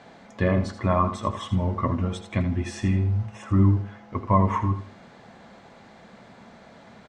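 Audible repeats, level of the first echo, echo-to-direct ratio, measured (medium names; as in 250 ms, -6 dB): 2, -11.0 dB, -10.5 dB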